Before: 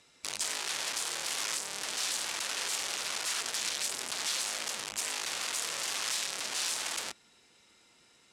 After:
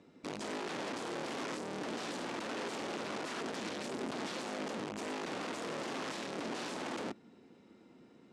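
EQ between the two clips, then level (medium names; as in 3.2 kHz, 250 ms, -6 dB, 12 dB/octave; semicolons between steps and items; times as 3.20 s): band-pass filter 250 Hz, Q 1.6; +16.0 dB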